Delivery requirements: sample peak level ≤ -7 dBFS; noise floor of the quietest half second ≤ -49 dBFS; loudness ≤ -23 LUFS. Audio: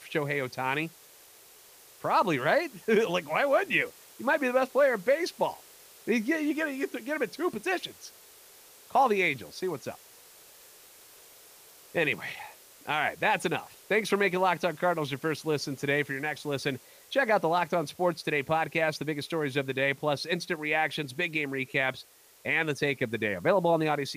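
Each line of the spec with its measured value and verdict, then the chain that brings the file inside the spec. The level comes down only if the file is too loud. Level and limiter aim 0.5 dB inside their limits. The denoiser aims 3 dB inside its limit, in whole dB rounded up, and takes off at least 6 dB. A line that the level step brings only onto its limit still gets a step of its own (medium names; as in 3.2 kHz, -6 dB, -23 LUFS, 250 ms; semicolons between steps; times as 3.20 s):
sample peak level -14.0 dBFS: pass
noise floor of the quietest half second -54 dBFS: pass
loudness -28.5 LUFS: pass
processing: none needed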